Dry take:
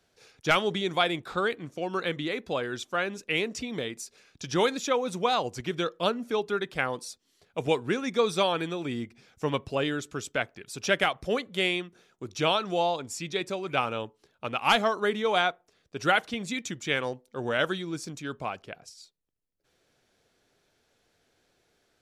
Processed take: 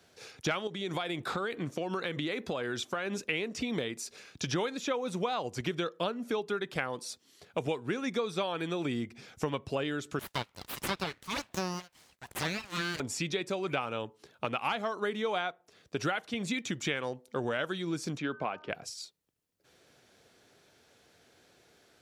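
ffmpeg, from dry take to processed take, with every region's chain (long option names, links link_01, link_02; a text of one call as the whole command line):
ffmpeg -i in.wav -filter_complex "[0:a]asettb=1/sr,asplit=3[link_01][link_02][link_03];[link_01]atrim=end=0.674[link_04];[link_02]atrim=start=0.67:end=3.22,asetpts=PTS-STARTPTS,afade=type=in:duration=0.004:curve=qsin,afade=type=out:start_time=2.546:duration=0.004:curve=qsin,highpass=56,acompressor=threshold=-34dB:ratio=4:attack=3.2:release=140:knee=1:detection=peak[link_05];[link_03]atrim=start=3.216[link_06];[link_04][link_05]acrossfade=duration=0.004:curve1=hsin:curve2=qsin[link_07];[link_07][link_06]acrossfade=duration=0.004:curve1=qsin:curve2=hsin,asettb=1/sr,asplit=3[link_08][link_09][link_10];[link_08]atrim=end=10.194[link_11];[link_09]atrim=start=10.19:end=13,asetpts=PTS-STARTPTS,afade=type=in:duration=0.004:curve=qsin,afade=type=out:start_time=2.806:duration=0.004:curve=qsin,highpass=880,aeval=exprs='abs(val(0))':channel_layout=same[link_12];[link_10]atrim=start=12.996[link_13];[link_11][link_12]acrossfade=duration=0.004:curve1=hsin:curve2=qsin[link_14];[link_14][link_13]acrossfade=duration=0.004:curve1=qsin:curve2=hsin,asettb=1/sr,asplit=3[link_15][link_16][link_17];[link_15]atrim=end=18.174[link_18];[link_16]atrim=start=18.17:end=18.7,asetpts=PTS-STARTPTS,afade=type=in:duration=0.004:curve=qsin,afade=type=out:start_time=0.526:duration=0.004:curve=qsin,highpass=170,lowpass=3000,bandreject=frequency=305.9:width_type=h:width=4,bandreject=frequency=611.8:width_type=h:width=4,bandreject=frequency=917.7:width_type=h:width=4,bandreject=frequency=1223.6:width_type=h:width=4,bandreject=frequency=1529.5:width_type=h:width=4[link_19];[link_17]atrim=start=18.696[link_20];[link_18][link_19]acrossfade=duration=0.004:curve1=hsin:curve2=qsin[link_21];[link_21][link_20]acrossfade=duration=0.004:curve1=qsin:curve2=hsin,acrossover=split=3800[link_22][link_23];[link_23]acompressor=threshold=-42dB:ratio=4:attack=1:release=60[link_24];[link_22][link_24]amix=inputs=2:normalize=0,highpass=70,acompressor=threshold=-37dB:ratio=6,volume=7dB" out.wav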